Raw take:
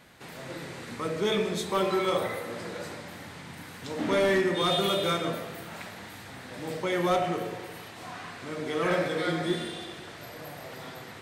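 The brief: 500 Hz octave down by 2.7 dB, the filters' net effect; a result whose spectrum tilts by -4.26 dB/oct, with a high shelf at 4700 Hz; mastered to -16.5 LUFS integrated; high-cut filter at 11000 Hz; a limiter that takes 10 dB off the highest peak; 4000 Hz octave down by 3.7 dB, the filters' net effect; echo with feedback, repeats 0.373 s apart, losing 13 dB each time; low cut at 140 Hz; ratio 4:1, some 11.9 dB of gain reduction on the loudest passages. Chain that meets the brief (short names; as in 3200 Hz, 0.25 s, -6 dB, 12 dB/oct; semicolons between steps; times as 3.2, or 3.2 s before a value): HPF 140 Hz; LPF 11000 Hz; bell 500 Hz -3.5 dB; bell 4000 Hz -8 dB; high shelf 4700 Hz +8.5 dB; compressor 4:1, threshold -38 dBFS; limiter -36.5 dBFS; feedback echo 0.373 s, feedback 22%, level -13 dB; gain +28 dB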